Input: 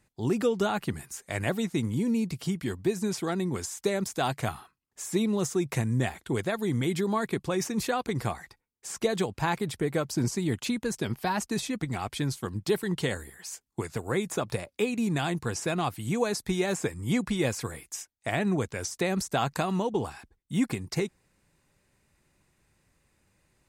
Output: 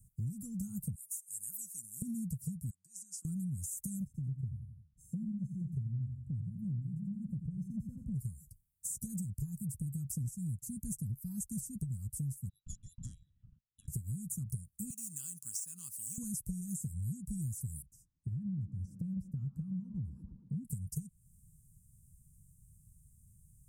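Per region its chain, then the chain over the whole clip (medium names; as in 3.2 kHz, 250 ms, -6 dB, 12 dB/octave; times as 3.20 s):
0.95–2.02 s: high-pass 1.3 kHz + de-esser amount 50%
2.70–3.25 s: compression 12:1, threshold -29 dBFS + Butterworth band-pass 2.8 kHz, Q 0.55
4.05–8.14 s: boxcar filter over 38 samples + feedback delay 86 ms, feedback 35%, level -7.5 dB
12.49–13.88 s: peaking EQ 290 Hz -2.5 dB 2.7 oct + frequency inversion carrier 3.8 kHz + transformer saturation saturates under 1.2 kHz
14.90–16.18 s: median filter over 3 samples + high-pass 870 Hz + peaking EQ 3.1 kHz +13.5 dB 1.6 oct
17.82–20.65 s: distance through air 390 m + feedback echo behind a band-pass 113 ms, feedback 60%, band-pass 630 Hz, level -3 dB
whole clip: inverse Chebyshev band-stop 380–3900 Hz, stop band 50 dB; compression 6:1, threshold -47 dBFS; trim +10.5 dB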